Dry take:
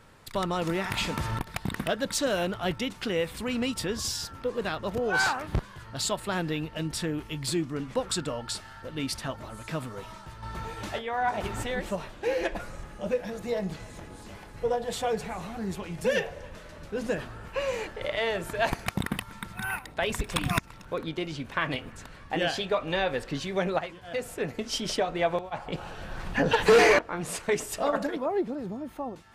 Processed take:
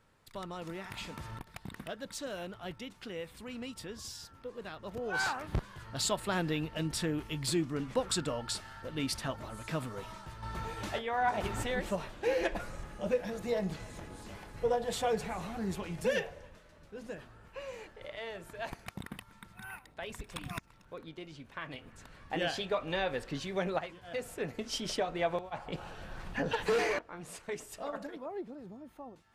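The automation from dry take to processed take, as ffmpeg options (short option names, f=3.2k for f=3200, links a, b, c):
-af "volume=5.5dB,afade=t=in:st=4.75:d=1.22:silence=0.298538,afade=t=out:st=15.87:d=0.75:silence=0.281838,afade=t=in:st=21.73:d=0.56:silence=0.398107,afade=t=out:st=25.86:d=1.01:silence=0.446684"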